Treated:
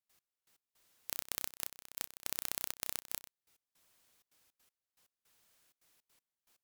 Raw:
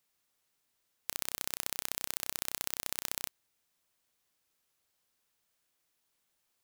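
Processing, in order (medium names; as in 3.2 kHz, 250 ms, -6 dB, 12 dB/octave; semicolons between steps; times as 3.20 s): trance gate ".x...x..xxxxx.xx" 160 bpm -24 dB; sine folder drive 7 dB, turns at -4.5 dBFS; trim -3.5 dB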